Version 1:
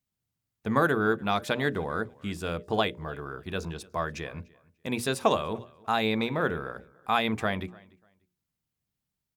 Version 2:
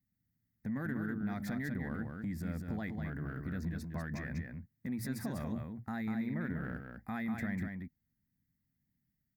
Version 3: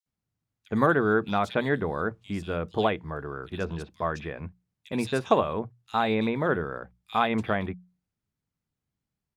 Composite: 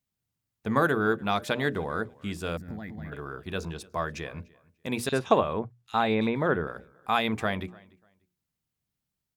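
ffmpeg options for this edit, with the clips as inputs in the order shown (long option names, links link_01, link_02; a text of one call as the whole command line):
ffmpeg -i take0.wav -i take1.wav -i take2.wav -filter_complex "[0:a]asplit=3[link_01][link_02][link_03];[link_01]atrim=end=2.572[link_04];[1:a]atrim=start=2.568:end=3.122[link_05];[link_02]atrim=start=3.118:end=5.092[link_06];[2:a]atrim=start=5.088:end=6.672[link_07];[link_03]atrim=start=6.668[link_08];[link_04][link_05]acrossfade=duration=0.004:curve1=hsin:curve2=hsin[link_09];[link_09][link_06]acrossfade=duration=0.004:curve1=hsin:curve2=hsin[link_10];[link_10][link_07]acrossfade=duration=0.004:curve1=hsin:curve2=hsin[link_11];[link_11][link_08]acrossfade=duration=0.004:curve1=hsin:curve2=hsin" out.wav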